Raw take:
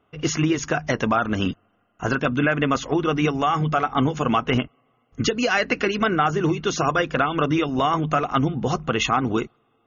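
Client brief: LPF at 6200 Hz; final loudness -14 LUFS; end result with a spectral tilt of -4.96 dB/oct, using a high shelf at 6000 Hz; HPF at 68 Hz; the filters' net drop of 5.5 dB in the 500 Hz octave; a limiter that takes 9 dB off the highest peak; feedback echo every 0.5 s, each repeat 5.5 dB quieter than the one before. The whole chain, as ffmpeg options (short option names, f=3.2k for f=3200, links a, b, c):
-af "highpass=68,lowpass=6.2k,equalizer=f=500:t=o:g=-7.5,highshelf=f=6k:g=4,alimiter=limit=-17dB:level=0:latency=1,aecho=1:1:500|1000|1500|2000|2500|3000|3500:0.531|0.281|0.149|0.079|0.0419|0.0222|0.0118,volume=12dB"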